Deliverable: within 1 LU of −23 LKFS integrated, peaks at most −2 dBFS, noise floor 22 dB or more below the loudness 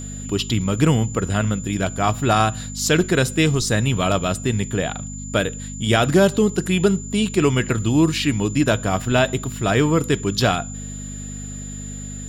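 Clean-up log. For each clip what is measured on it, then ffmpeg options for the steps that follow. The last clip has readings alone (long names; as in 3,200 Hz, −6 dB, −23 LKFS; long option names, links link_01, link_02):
mains hum 50 Hz; hum harmonics up to 250 Hz; level of the hum −31 dBFS; interfering tone 7,100 Hz; level of the tone −35 dBFS; integrated loudness −20.0 LKFS; sample peak −3.5 dBFS; target loudness −23.0 LKFS
→ -af "bandreject=frequency=50:width_type=h:width=4,bandreject=frequency=100:width_type=h:width=4,bandreject=frequency=150:width_type=h:width=4,bandreject=frequency=200:width_type=h:width=4,bandreject=frequency=250:width_type=h:width=4"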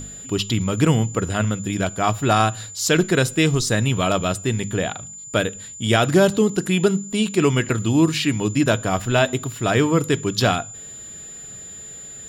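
mains hum none found; interfering tone 7,100 Hz; level of the tone −35 dBFS
→ -af "bandreject=frequency=7100:width=30"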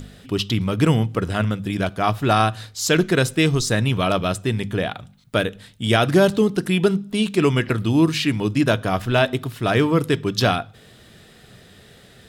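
interfering tone none found; integrated loudness −20.5 LKFS; sample peak −4.0 dBFS; target loudness −23.0 LKFS
→ -af "volume=-2.5dB"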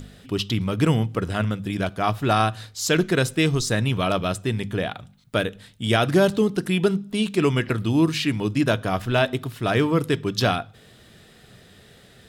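integrated loudness −23.0 LKFS; sample peak −6.5 dBFS; background noise floor −51 dBFS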